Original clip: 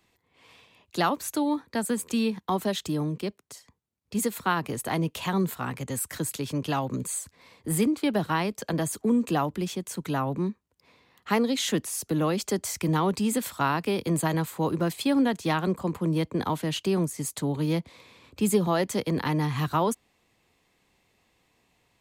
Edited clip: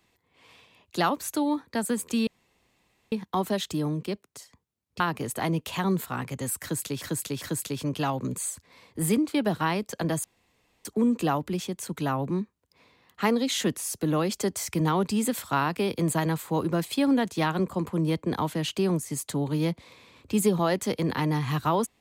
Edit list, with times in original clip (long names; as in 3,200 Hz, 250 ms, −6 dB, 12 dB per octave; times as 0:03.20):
0:02.27: splice in room tone 0.85 s
0:04.15–0:04.49: remove
0:06.11–0:06.51: repeat, 3 plays
0:08.93: splice in room tone 0.61 s